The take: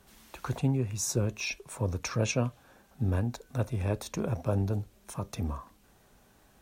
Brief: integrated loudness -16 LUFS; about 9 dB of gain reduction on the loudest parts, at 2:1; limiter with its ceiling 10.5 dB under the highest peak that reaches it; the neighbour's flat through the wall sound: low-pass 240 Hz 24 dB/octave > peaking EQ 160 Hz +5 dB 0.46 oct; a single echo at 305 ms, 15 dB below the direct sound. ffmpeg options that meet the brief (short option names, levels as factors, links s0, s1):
-af "acompressor=threshold=0.01:ratio=2,alimiter=level_in=2.99:limit=0.0631:level=0:latency=1,volume=0.335,lowpass=f=240:w=0.5412,lowpass=f=240:w=1.3066,equalizer=f=160:t=o:w=0.46:g=5,aecho=1:1:305:0.178,volume=26.6"